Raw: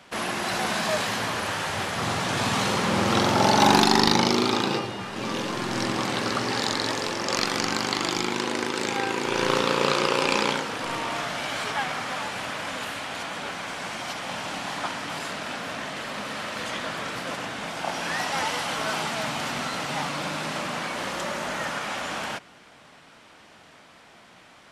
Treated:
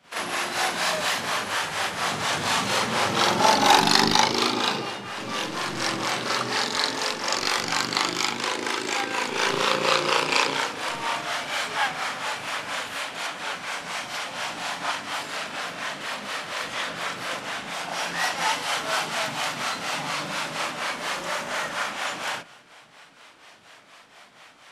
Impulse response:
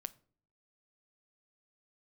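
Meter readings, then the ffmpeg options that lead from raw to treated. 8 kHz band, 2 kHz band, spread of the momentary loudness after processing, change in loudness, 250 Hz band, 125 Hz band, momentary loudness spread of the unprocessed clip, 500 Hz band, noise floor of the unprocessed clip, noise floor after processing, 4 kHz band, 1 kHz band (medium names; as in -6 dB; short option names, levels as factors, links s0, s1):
+2.5 dB, +2.0 dB, 10 LU, +1.0 dB, -5.0 dB, -5.5 dB, 10 LU, -2.0 dB, -52 dBFS, -51 dBFS, +2.5 dB, +1.0 dB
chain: -filter_complex "[0:a]lowshelf=f=410:g=-10,acrossover=split=420[s0][s1];[s0]aeval=exprs='val(0)*(1-0.7/2+0.7/2*cos(2*PI*4.2*n/s))':c=same[s2];[s1]aeval=exprs='val(0)*(1-0.7/2-0.7/2*cos(2*PI*4.2*n/s))':c=same[s3];[s2][s3]amix=inputs=2:normalize=0,asplit=2[s4][s5];[1:a]atrim=start_sample=2205,adelay=40[s6];[s5][s6]afir=irnorm=-1:irlink=0,volume=2.82[s7];[s4][s7]amix=inputs=2:normalize=0,volume=0.891"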